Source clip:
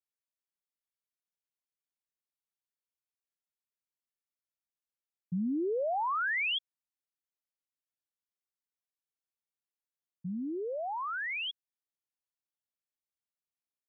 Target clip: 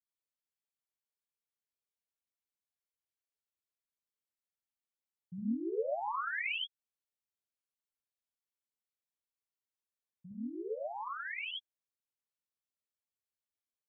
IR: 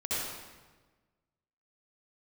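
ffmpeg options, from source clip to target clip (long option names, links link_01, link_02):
-filter_complex "[0:a]asplit=3[link_01][link_02][link_03];[link_01]afade=type=out:start_time=6.55:duration=0.02[link_04];[link_02]acompressor=threshold=-37dB:ratio=6,afade=type=in:start_time=6.55:duration=0.02,afade=type=out:start_time=10.37:duration=0.02[link_05];[link_03]afade=type=in:start_time=10.37:duration=0.02[link_06];[link_04][link_05][link_06]amix=inputs=3:normalize=0[link_07];[1:a]atrim=start_sample=2205,atrim=end_sample=3969[link_08];[link_07][link_08]afir=irnorm=-1:irlink=0,volume=-7.5dB"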